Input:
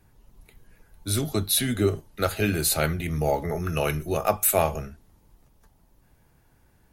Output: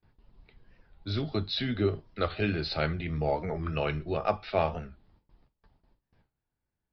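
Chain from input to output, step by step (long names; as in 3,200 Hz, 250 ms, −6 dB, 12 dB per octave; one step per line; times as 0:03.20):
noise gate with hold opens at −48 dBFS
downsampling to 11,025 Hz
wow of a warped record 45 rpm, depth 160 cents
level −4.5 dB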